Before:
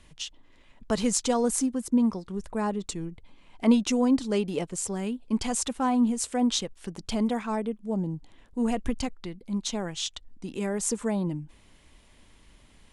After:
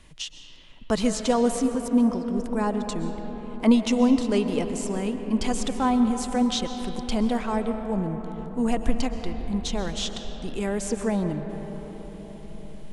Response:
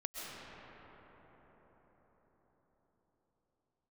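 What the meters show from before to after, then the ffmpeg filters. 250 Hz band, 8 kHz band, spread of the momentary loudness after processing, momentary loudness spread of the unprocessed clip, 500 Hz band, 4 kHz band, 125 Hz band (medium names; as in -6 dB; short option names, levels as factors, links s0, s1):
+3.0 dB, -4.0 dB, 15 LU, 14 LU, +3.5 dB, +2.0 dB, +3.0 dB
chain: -filter_complex "[0:a]acrossover=split=4500[s0][s1];[s1]acompressor=threshold=0.0158:ratio=4:attack=1:release=60[s2];[s0][s2]amix=inputs=2:normalize=0,asplit=2[s3][s4];[s4]asubboost=boost=6:cutoff=74[s5];[1:a]atrim=start_sample=2205[s6];[s5][s6]afir=irnorm=-1:irlink=0,volume=0.631[s7];[s3][s7]amix=inputs=2:normalize=0"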